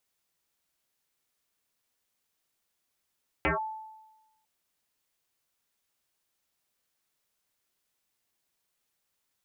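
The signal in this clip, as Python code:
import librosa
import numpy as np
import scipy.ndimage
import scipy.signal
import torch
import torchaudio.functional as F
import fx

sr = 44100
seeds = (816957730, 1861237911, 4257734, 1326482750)

y = fx.fm2(sr, length_s=1.0, level_db=-21.5, carrier_hz=874.0, ratio=0.27, index=7.5, index_s=0.14, decay_s=1.11, shape='linear')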